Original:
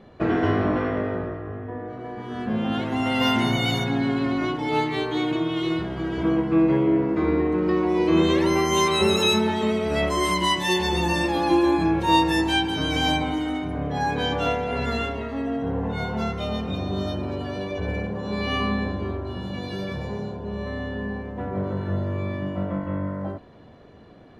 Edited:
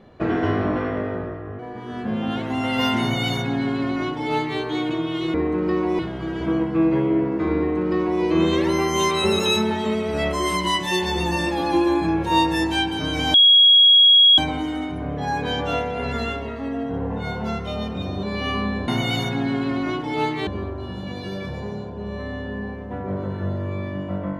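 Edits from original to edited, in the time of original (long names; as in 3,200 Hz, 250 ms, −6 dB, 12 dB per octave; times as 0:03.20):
0:01.59–0:02.01: remove
0:03.43–0:05.02: duplicate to 0:18.94
0:07.34–0:07.99: duplicate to 0:05.76
0:13.11: insert tone 3,310 Hz −9 dBFS 1.04 s
0:16.96–0:18.29: remove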